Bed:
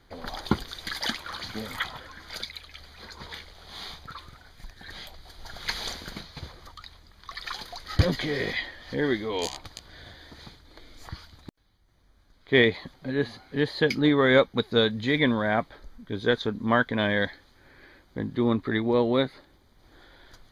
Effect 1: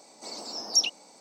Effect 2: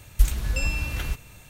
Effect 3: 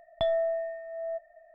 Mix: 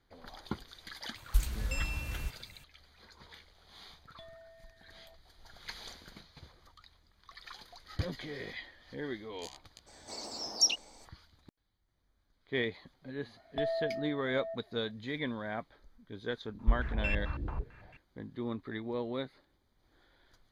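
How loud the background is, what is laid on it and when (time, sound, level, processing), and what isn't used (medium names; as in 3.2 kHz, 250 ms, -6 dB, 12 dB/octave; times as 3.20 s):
bed -13.5 dB
1.15 s: add 2 -9 dB
3.98 s: add 3 -17 dB + high-order bell 770 Hz -10.5 dB
9.86 s: add 1 -3.5 dB, fades 0.02 s
13.37 s: add 3 -7 dB
16.48 s: add 2 -8 dB + step-sequenced low-pass 9 Hz 330–2200 Hz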